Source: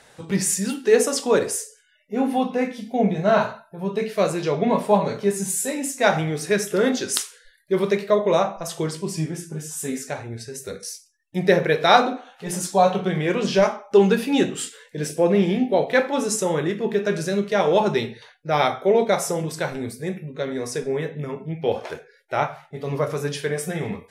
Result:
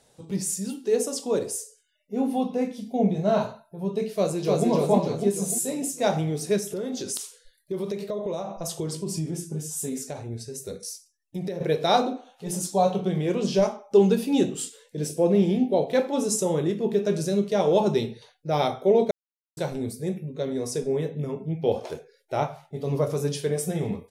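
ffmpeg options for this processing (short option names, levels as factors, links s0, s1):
-filter_complex "[0:a]asplit=2[s0][s1];[s1]afade=t=in:st=4.14:d=0.01,afade=t=out:st=4.68:d=0.01,aecho=0:1:300|600|900|1200|1500|1800|2100:0.944061|0.47203|0.236015|0.118008|0.0590038|0.0295019|0.014751[s2];[s0][s2]amix=inputs=2:normalize=0,asettb=1/sr,asplit=3[s3][s4][s5];[s3]atrim=end=6.584[s6];[s4]atrim=start=6.58:end=11.61,asetpts=PTS-STARTPTS,afade=t=in:d=0.004:c=qsin,afade=t=out:st=5.026:d=0.004:c=qsin,acompressor=threshold=0.0562:ratio=6:attack=3.2:release=140:knee=1:detection=peak[s7];[s5]atrim=start=11.606[s8];[s6][s7]acrossfade=d=0.004:c1=hsin:c2=qsin[s9];[s9][s8]acrossfade=d=0.004:c1=qsin:c2=hsin,asplit=3[s10][s11][s12];[s10]atrim=end=19.11,asetpts=PTS-STARTPTS,afade=t=out:st=19.106:d=0.004:c=hsin[s13];[s11]atrim=start=19.11:end=19.57,asetpts=PTS-STARTPTS,volume=0[s14];[s12]atrim=start=19.57,asetpts=PTS-STARTPTS,afade=t=in:d=0.004:c=hsin[s15];[s13][s14][s15]concat=n=3:v=0:a=1,equalizer=f=1700:t=o:w=1.6:g=-13.5,dynaudnorm=f=300:g=13:m=2.24,volume=0.531"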